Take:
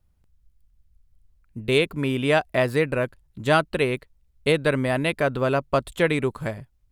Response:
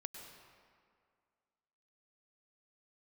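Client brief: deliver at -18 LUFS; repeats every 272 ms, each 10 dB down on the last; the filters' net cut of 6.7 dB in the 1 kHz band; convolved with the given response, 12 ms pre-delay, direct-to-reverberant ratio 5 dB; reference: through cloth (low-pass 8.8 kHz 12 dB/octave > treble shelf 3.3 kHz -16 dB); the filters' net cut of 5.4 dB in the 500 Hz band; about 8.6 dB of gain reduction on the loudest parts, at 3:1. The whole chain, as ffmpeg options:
-filter_complex "[0:a]equalizer=f=500:t=o:g=-4.5,equalizer=f=1000:t=o:g=-6,acompressor=threshold=0.0316:ratio=3,aecho=1:1:272|544|816|1088:0.316|0.101|0.0324|0.0104,asplit=2[s0][s1];[1:a]atrim=start_sample=2205,adelay=12[s2];[s1][s2]afir=irnorm=-1:irlink=0,volume=0.794[s3];[s0][s3]amix=inputs=2:normalize=0,lowpass=8800,highshelf=f=3300:g=-16,volume=5.96"

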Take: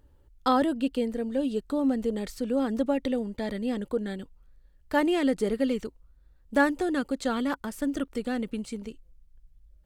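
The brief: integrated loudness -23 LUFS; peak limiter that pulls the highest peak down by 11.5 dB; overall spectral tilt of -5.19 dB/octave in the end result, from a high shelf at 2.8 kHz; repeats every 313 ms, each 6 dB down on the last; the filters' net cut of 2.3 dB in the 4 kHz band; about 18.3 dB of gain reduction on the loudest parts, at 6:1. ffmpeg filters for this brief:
-af "highshelf=f=2800:g=3,equalizer=f=4000:t=o:g=-5.5,acompressor=threshold=0.0112:ratio=6,alimiter=level_in=3.55:limit=0.0631:level=0:latency=1,volume=0.282,aecho=1:1:313|626|939|1252|1565|1878:0.501|0.251|0.125|0.0626|0.0313|0.0157,volume=11.2"

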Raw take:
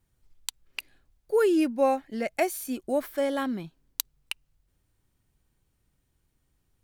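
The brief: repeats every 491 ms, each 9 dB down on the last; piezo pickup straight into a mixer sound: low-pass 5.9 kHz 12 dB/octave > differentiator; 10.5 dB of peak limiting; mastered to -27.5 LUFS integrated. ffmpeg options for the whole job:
-af "alimiter=limit=0.1:level=0:latency=1,lowpass=5900,aderivative,aecho=1:1:491|982|1473|1964:0.355|0.124|0.0435|0.0152,volume=13.3"

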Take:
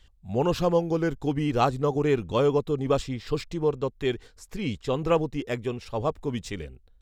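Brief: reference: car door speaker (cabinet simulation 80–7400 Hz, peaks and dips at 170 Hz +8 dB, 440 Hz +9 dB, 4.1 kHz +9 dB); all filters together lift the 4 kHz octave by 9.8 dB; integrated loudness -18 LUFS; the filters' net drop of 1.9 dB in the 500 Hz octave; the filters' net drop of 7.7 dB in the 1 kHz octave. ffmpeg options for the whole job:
-af "highpass=80,equalizer=f=170:t=q:w=4:g=8,equalizer=f=440:t=q:w=4:g=9,equalizer=f=4100:t=q:w=4:g=9,lowpass=f=7400:w=0.5412,lowpass=f=7400:w=1.3066,equalizer=f=500:t=o:g=-8.5,equalizer=f=1000:t=o:g=-8,equalizer=f=4000:t=o:g=8,volume=2.82"

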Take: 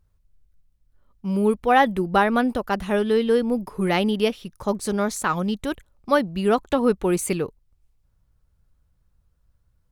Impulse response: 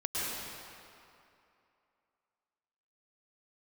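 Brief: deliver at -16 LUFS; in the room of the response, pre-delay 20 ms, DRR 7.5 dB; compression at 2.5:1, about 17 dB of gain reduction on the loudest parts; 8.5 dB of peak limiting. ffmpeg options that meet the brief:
-filter_complex "[0:a]acompressor=threshold=0.01:ratio=2.5,alimiter=level_in=2:limit=0.0631:level=0:latency=1,volume=0.501,asplit=2[s0][s1];[1:a]atrim=start_sample=2205,adelay=20[s2];[s1][s2]afir=irnorm=-1:irlink=0,volume=0.188[s3];[s0][s3]amix=inputs=2:normalize=0,volume=14.1"

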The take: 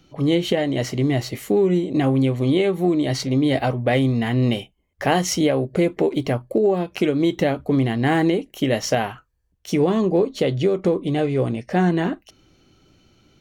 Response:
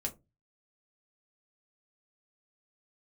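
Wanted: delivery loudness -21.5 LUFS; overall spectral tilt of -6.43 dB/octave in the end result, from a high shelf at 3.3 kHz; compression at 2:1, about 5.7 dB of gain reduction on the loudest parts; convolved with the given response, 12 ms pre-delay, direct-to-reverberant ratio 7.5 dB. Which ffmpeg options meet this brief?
-filter_complex "[0:a]highshelf=f=3300:g=-5.5,acompressor=threshold=0.0562:ratio=2,asplit=2[s0][s1];[1:a]atrim=start_sample=2205,adelay=12[s2];[s1][s2]afir=irnorm=-1:irlink=0,volume=0.376[s3];[s0][s3]amix=inputs=2:normalize=0,volume=1.5"

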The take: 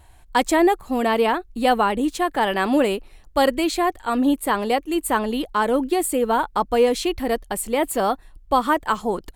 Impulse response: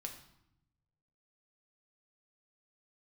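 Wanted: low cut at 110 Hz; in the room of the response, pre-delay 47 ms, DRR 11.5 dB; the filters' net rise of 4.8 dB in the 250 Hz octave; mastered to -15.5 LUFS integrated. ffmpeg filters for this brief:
-filter_complex "[0:a]highpass=110,equalizer=f=250:t=o:g=6,asplit=2[s0][s1];[1:a]atrim=start_sample=2205,adelay=47[s2];[s1][s2]afir=irnorm=-1:irlink=0,volume=0.376[s3];[s0][s3]amix=inputs=2:normalize=0,volume=1.5"

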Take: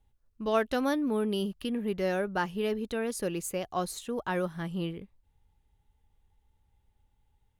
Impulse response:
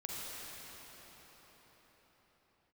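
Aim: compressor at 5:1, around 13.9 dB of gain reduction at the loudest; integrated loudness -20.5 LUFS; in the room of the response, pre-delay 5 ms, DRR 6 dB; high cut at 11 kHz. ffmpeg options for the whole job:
-filter_complex "[0:a]lowpass=11000,acompressor=threshold=0.0141:ratio=5,asplit=2[s0][s1];[1:a]atrim=start_sample=2205,adelay=5[s2];[s1][s2]afir=irnorm=-1:irlink=0,volume=0.398[s3];[s0][s3]amix=inputs=2:normalize=0,volume=8.91"

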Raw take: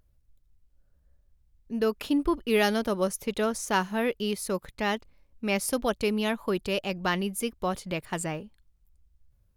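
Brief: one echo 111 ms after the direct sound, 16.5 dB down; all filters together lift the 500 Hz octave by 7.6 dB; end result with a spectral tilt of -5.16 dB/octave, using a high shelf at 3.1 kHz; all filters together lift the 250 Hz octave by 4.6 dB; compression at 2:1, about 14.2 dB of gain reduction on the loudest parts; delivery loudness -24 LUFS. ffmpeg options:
-af "equalizer=f=250:t=o:g=3.5,equalizer=f=500:t=o:g=8.5,highshelf=f=3100:g=-5,acompressor=threshold=0.00891:ratio=2,aecho=1:1:111:0.15,volume=3.98"

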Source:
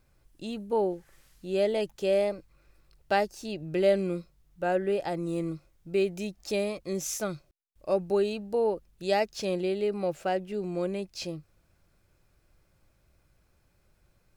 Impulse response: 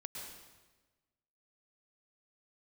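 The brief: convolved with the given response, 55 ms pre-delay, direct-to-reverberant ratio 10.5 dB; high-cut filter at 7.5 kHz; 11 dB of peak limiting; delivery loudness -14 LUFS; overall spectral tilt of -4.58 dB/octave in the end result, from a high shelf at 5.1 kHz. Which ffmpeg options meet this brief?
-filter_complex "[0:a]lowpass=7500,highshelf=f=5100:g=7,alimiter=limit=0.0631:level=0:latency=1,asplit=2[s0][s1];[1:a]atrim=start_sample=2205,adelay=55[s2];[s1][s2]afir=irnorm=-1:irlink=0,volume=0.376[s3];[s0][s3]amix=inputs=2:normalize=0,volume=10"

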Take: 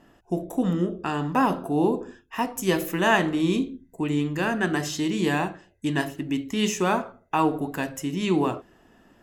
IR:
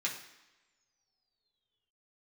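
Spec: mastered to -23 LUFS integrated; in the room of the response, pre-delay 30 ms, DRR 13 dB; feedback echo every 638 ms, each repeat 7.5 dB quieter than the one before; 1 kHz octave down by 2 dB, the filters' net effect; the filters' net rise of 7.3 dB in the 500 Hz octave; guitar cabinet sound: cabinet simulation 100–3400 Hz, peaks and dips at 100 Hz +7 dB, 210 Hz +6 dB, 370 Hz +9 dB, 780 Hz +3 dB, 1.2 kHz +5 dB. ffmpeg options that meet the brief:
-filter_complex "[0:a]equalizer=f=500:t=o:g=4,equalizer=f=1000:t=o:g=-8,aecho=1:1:638|1276|1914|2552|3190:0.422|0.177|0.0744|0.0312|0.0131,asplit=2[s0][s1];[1:a]atrim=start_sample=2205,adelay=30[s2];[s1][s2]afir=irnorm=-1:irlink=0,volume=0.141[s3];[s0][s3]amix=inputs=2:normalize=0,highpass=100,equalizer=f=100:t=q:w=4:g=7,equalizer=f=210:t=q:w=4:g=6,equalizer=f=370:t=q:w=4:g=9,equalizer=f=780:t=q:w=4:g=3,equalizer=f=1200:t=q:w=4:g=5,lowpass=f=3400:w=0.5412,lowpass=f=3400:w=1.3066,volume=0.75"

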